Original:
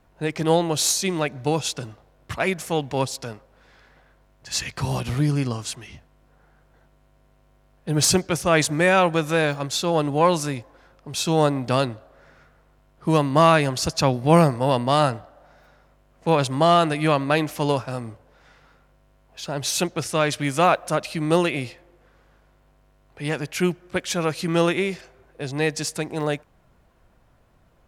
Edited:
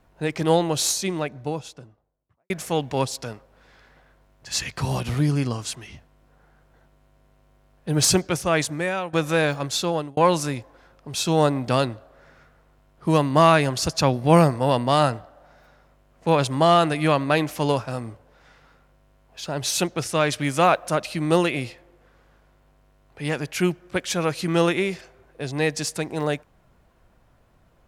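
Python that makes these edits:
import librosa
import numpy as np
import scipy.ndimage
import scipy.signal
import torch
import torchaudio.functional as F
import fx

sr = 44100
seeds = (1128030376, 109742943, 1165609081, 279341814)

y = fx.studio_fade_out(x, sr, start_s=0.59, length_s=1.91)
y = fx.edit(y, sr, fx.fade_out_to(start_s=8.24, length_s=0.89, floor_db=-15.0),
    fx.fade_out_span(start_s=9.83, length_s=0.34), tone=tone)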